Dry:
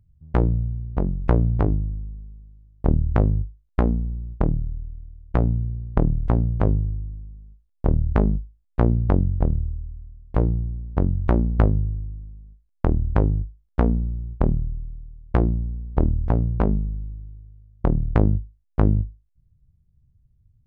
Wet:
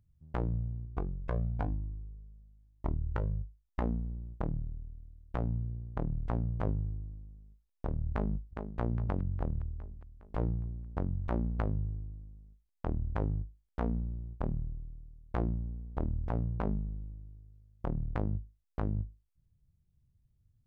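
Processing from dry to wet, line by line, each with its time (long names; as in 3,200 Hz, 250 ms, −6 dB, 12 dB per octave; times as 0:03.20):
0:00.86–0:03.82: flanger whose copies keep moving one way rising 1 Hz
0:08.10–0:08.79: delay throw 410 ms, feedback 55%, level −13.5 dB
whole clip: dynamic equaliser 370 Hz, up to −5 dB, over −33 dBFS, Q 0.98; brickwall limiter −14.5 dBFS; low-shelf EQ 200 Hz −8.5 dB; level −3 dB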